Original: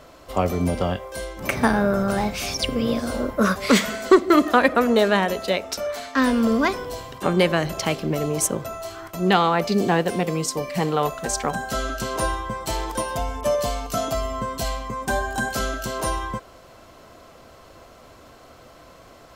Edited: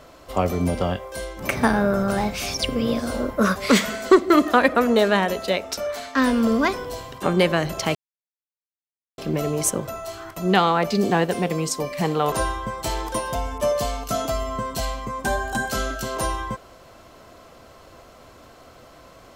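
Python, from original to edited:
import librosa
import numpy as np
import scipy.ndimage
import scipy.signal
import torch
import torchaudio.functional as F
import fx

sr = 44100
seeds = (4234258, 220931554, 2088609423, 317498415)

y = fx.edit(x, sr, fx.insert_silence(at_s=7.95, length_s=1.23),
    fx.cut(start_s=11.09, length_s=1.06), tone=tone)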